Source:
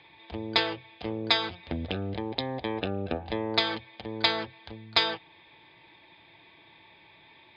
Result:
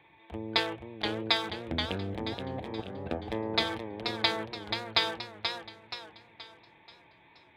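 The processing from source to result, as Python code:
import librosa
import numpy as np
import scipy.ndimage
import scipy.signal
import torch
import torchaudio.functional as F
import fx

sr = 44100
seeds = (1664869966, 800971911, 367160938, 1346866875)

y = fx.wiener(x, sr, points=9)
y = fx.over_compress(y, sr, threshold_db=-36.0, ratio=-0.5, at=(2.33, 3.08))
y = fx.echo_warbled(y, sr, ms=478, feedback_pct=43, rate_hz=2.8, cents=124, wet_db=-6.5)
y = F.gain(torch.from_numpy(y), -2.5).numpy()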